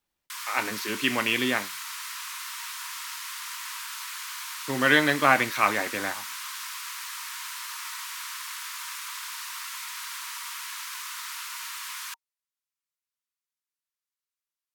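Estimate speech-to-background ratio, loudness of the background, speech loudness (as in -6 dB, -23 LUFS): 10.0 dB, -34.5 LUFS, -24.5 LUFS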